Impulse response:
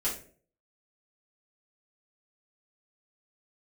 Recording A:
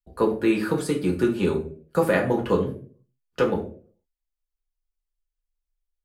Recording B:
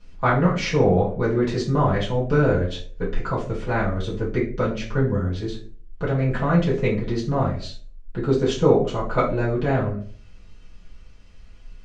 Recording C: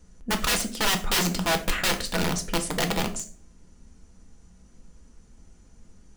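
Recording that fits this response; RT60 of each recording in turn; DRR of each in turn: B; 0.45, 0.45, 0.45 s; -0.5, -8.0, 5.0 dB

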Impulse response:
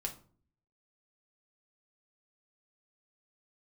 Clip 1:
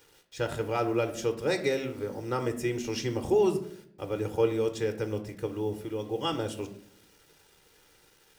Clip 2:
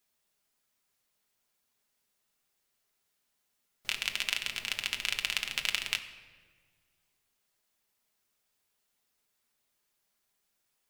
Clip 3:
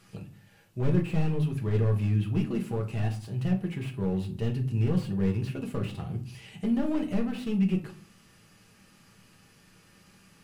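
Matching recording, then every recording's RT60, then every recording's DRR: 3; 0.65, 1.7, 0.45 s; 7.0, 4.0, 1.5 dB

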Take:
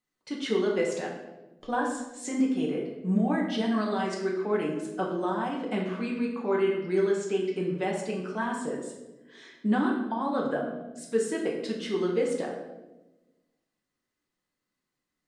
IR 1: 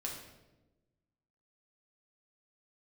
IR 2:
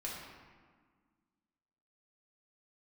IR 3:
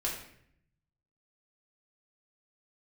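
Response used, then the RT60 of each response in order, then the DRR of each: 1; 1.1, 1.6, 0.65 s; -2.0, -5.0, -4.5 dB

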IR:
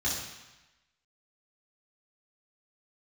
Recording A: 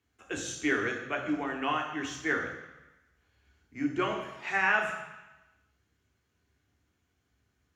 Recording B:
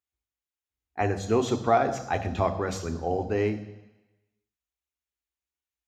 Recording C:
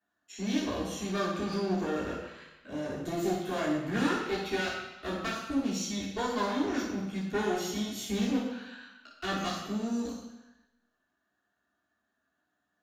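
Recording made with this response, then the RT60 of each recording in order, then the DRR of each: C; 1.0, 1.0, 1.0 s; 1.0, 8.5, -7.5 dB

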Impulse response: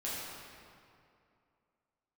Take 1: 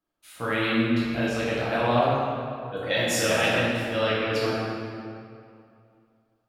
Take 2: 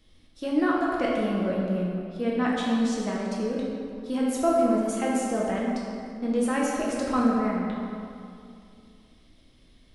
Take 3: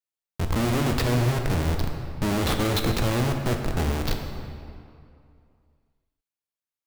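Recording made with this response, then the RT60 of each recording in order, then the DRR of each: 1; 2.5, 2.5, 2.5 s; -9.0, -4.5, 3.5 dB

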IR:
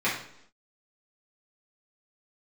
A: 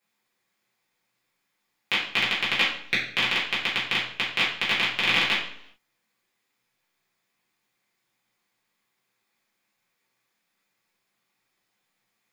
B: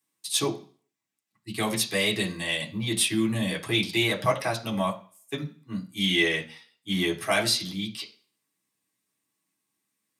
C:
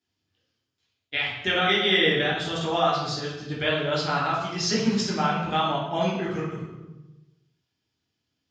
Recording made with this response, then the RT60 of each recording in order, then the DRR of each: A; 0.75, 0.40, 1.1 s; -9.0, -2.5, -5.5 dB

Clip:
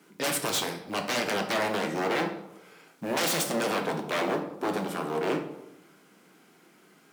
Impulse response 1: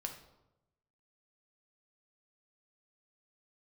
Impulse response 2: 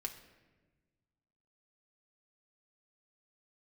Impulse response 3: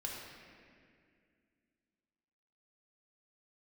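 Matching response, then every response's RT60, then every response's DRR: 1; 0.95, 1.3, 2.2 s; 3.5, 3.0, -3.0 dB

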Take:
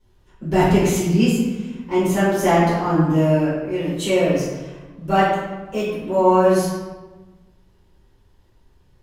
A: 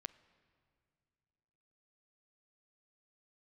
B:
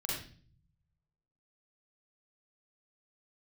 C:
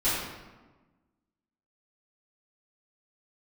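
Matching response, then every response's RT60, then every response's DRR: C; 2.5, 0.45, 1.3 s; 14.0, -5.0, -14.0 dB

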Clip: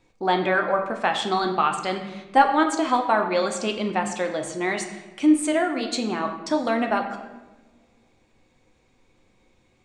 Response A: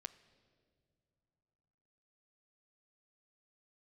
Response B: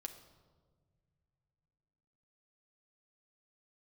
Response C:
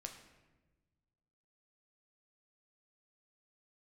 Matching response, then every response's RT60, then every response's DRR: C; not exponential, not exponential, 1.2 s; 12.5, 4.5, 3.5 dB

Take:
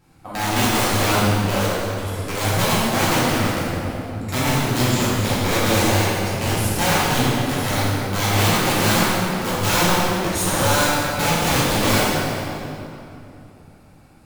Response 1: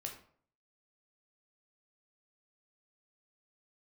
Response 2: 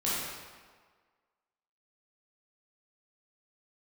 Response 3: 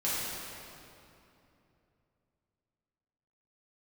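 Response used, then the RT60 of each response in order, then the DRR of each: 3; 0.55, 1.6, 2.9 s; 1.5, -9.5, -10.5 dB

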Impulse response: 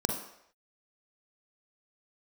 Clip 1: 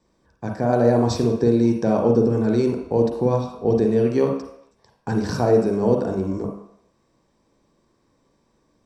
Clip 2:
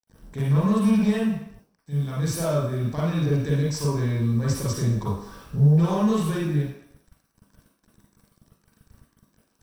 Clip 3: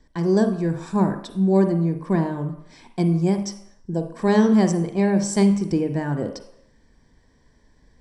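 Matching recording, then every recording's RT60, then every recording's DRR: 1; not exponential, not exponential, not exponential; 2.0, -7.0, 7.0 dB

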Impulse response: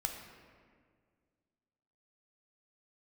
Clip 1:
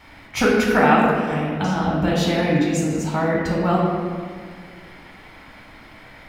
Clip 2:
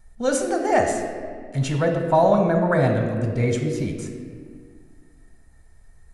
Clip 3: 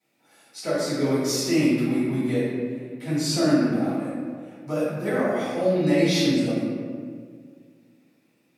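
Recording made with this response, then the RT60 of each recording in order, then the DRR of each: 2; 1.9, 1.9, 1.9 s; -4.0, 3.0, -13.0 dB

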